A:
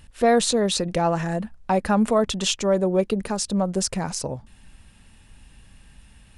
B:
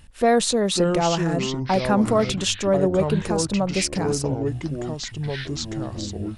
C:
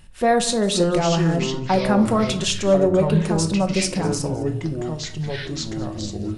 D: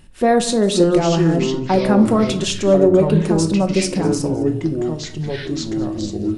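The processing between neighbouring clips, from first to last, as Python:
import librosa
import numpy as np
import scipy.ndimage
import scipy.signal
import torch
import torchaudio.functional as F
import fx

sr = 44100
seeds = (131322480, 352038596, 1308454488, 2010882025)

y1 = fx.echo_pitch(x, sr, ms=474, semitones=-5, count=3, db_per_echo=-6.0)
y2 = y1 + 10.0 ** (-20.0 / 20.0) * np.pad(y1, (int(209 * sr / 1000.0), 0))[:len(y1)]
y2 = fx.room_shoebox(y2, sr, seeds[0], volume_m3=560.0, walls='furnished', distance_m=1.0)
y3 = fx.peak_eq(y2, sr, hz=310.0, db=8.5, octaves=1.1)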